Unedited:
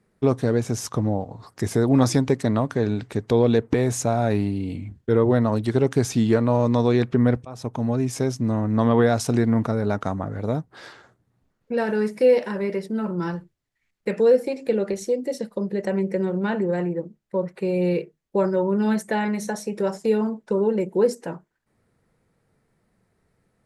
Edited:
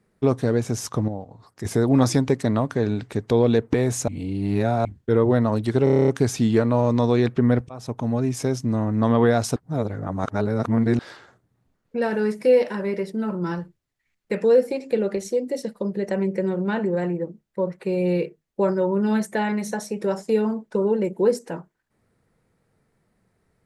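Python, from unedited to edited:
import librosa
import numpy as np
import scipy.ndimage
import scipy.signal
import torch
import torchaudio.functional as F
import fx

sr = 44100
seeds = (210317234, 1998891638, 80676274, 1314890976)

y = fx.edit(x, sr, fx.clip_gain(start_s=1.08, length_s=0.57, db=-7.0),
    fx.reverse_span(start_s=4.08, length_s=0.77),
    fx.stutter(start_s=5.84, slice_s=0.03, count=9),
    fx.reverse_span(start_s=9.32, length_s=1.43), tone=tone)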